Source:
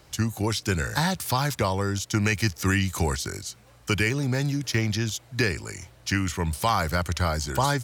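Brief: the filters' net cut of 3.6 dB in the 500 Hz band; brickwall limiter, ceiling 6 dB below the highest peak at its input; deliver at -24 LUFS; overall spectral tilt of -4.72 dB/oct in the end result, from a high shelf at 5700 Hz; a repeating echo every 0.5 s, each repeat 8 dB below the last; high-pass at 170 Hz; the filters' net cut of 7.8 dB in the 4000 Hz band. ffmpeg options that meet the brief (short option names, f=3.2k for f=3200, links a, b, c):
-af "highpass=170,equalizer=f=500:t=o:g=-4.5,equalizer=f=4k:t=o:g=-8.5,highshelf=f=5.7k:g=-5,alimiter=limit=-19dB:level=0:latency=1,aecho=1:1:500|1000|1500|2000|2500:0.398|0.159|0.0637|0.0255|0.0102,volume=7dB"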